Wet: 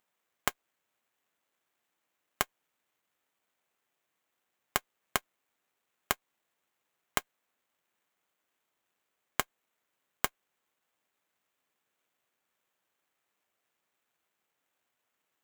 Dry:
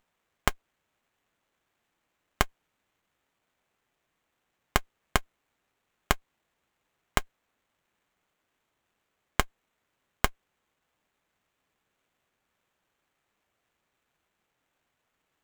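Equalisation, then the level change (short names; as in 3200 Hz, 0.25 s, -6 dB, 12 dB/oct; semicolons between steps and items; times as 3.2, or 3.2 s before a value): HPF 280 Hz 6 dB/oct; high shelf 9000 Hz +9 dB; -4.5 dB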